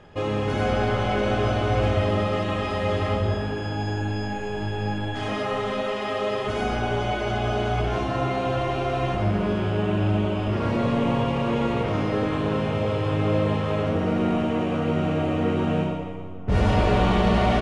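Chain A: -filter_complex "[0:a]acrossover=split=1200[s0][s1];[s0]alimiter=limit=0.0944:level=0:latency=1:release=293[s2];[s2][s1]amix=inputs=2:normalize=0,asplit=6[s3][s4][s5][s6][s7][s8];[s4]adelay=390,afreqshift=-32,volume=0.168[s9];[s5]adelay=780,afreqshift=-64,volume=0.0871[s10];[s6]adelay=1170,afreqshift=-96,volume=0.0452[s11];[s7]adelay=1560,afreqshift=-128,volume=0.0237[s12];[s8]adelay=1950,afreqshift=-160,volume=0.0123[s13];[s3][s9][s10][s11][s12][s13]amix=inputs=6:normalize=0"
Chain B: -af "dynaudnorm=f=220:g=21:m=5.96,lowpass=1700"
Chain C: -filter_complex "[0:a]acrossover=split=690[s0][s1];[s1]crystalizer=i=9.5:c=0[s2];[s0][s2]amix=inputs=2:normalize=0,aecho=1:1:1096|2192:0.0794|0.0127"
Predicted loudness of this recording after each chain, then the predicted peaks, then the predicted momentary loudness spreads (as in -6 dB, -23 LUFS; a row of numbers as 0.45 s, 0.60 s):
-28.5 LUFS, -15.5 LUFS, -21.0 LUFS; -15.0 dBFS, -1.5 dBFS, -5.0 dBFS; 2 LU, 8 LU, 4 LU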